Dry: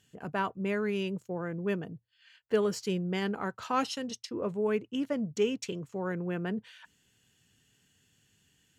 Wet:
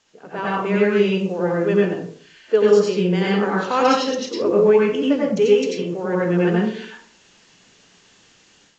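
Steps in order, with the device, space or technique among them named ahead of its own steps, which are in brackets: filmed off a television (band-pass 270–7900 Hz; peaking EQ 450 Hz +7 dB 0.48 oct; reverberation RT60 0.50 s, pre-delay 84 ms, DRR -4.5 dB; white noise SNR 34 dB; level rider gain up to 10.5 dB; trim -2 dB; AAC 32 kbps 16 kHz)

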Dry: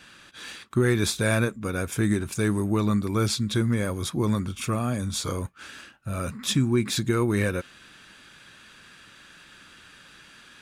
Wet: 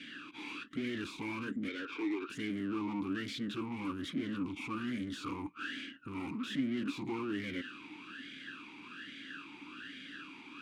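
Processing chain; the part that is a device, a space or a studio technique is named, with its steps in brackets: 1.68–2.30 s: elliptic band-pass 420–4600 Hz; talk box (valve stage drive 41 dB, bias 0.5; talking filter i-u 1.2 Hz); trim +18 dB

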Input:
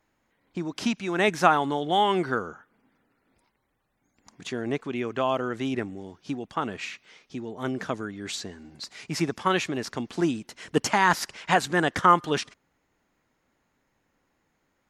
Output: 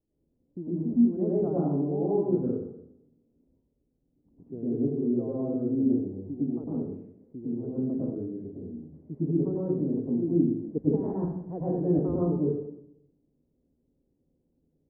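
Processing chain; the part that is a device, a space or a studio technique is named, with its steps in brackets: next room (low-pass 450 Hz 24 dB/octave; reverberation RT60 0.75 s, pre-delay 98 ms, DRR -7 dB); trim -6 dB

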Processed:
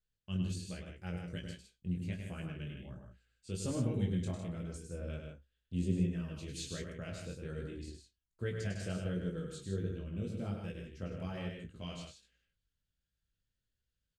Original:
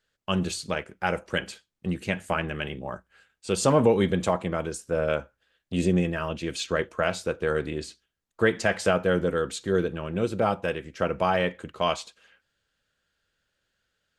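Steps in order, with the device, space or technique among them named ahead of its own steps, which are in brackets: double-tracked vocal (doubling 29 ms -14 dB; chorus 1.3 Hz, delay 16 ms, depth 6.4 ms); amplifier tone stack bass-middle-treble 10-0-1; loudspeakers at several distances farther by 35 m -6 dB, 53 m -7 dB; 6.36–6.93 s: treble shelf 4.4 kHz +9.5 dB; trim +8 dB

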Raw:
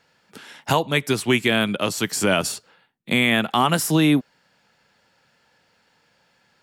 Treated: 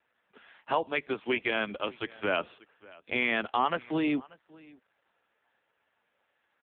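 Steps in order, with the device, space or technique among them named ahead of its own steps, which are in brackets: 1.75–3.41 s: dynamic bell 6.4 kHz, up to +7 dB, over -43 dBFS, Q 2.5; satellite phone (band-pass 320–3100 Hz; delay 587 ms -23 dB; trim -6.5 dB; AMR-NB 5.9 kbps 8 kHz)

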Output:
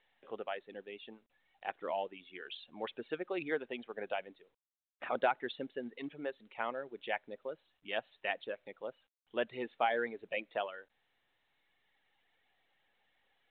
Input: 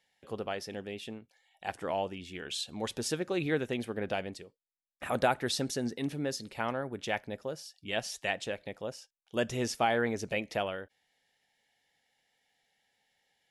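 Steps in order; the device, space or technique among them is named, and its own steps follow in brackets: reverb removal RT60 1.6 s; telephone (band-pass 340–3300 Hz; trim -2.5 dB; µ-law 64 kbps 8 kHz)

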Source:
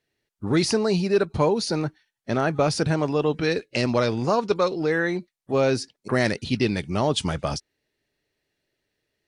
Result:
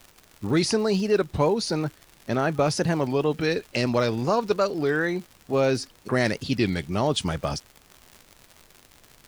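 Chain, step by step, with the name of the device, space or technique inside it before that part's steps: warped LP (warped record 33 1/3 rpm, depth 160 cents; crackle 110 per s -33 dBFS; pink noise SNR 32 dB); trim -1 dB

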